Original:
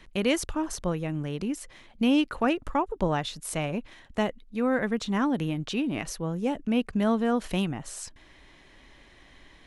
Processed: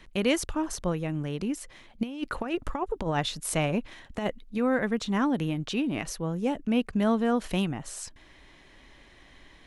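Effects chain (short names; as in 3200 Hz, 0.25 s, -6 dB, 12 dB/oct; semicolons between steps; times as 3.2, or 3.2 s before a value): 2.03–4.58 negative-ratio compressor -27 dBFS, ratio -0.5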